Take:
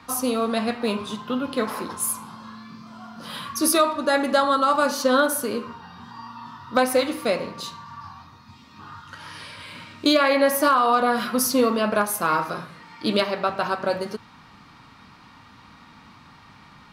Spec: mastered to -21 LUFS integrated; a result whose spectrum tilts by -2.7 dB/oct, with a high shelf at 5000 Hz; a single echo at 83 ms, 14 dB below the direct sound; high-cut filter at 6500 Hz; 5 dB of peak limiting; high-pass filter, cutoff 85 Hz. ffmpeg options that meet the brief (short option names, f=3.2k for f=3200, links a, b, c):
-af "highpass=85,lowpass=6.5k,highshelf=f=5k:g=-4,alimiter=limit=-13dB:level=0:latency=1,aecho=1:1:83:0.2,volume=3.5dB"